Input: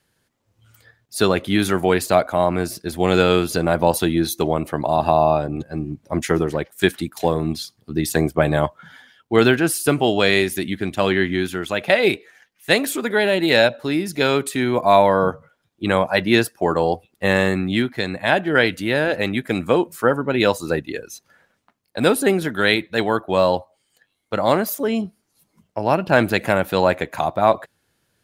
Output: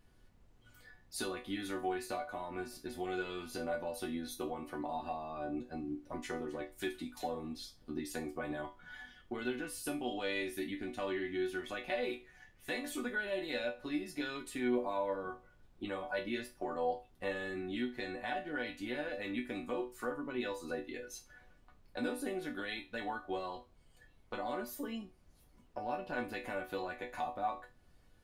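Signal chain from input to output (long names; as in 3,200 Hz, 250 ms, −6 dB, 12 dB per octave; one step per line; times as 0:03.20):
high-shelf EQ 6,500 Hz −7 dB
in parallel at +1 dB: brickwall limiter −10 dBFS, peak gain reduction 8.5 dB
on the sum: downward compressor 3 to 1, threshold −27 dBFS, peak gain reduction 16 dB
resonators tuned to a chord B3 minor, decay 0.26 s
background noise brown −68 dBFS
level +5 dB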